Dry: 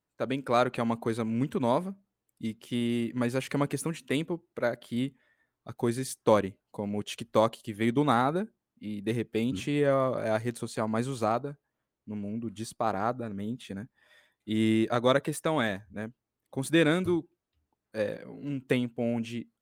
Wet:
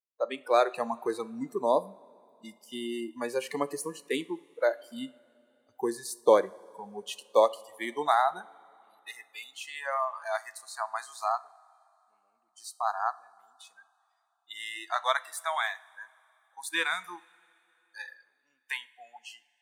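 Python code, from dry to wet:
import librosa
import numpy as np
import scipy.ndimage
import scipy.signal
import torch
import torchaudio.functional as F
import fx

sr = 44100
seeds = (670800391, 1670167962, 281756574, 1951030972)

y = fx.filter_sweep_highpass(x, sr, from_hz=430.0, to_hz=940.0, start_s=6.74, end_s=9.72, q=1.4)
y = fx.noise_reduce_blind(y, sr, reduce_db=27)
y = fx.rev_double_slope(y, sr, seeds[0], early_s=0.44, late_s=3.2, knee_db=-18, drr_db=15.0)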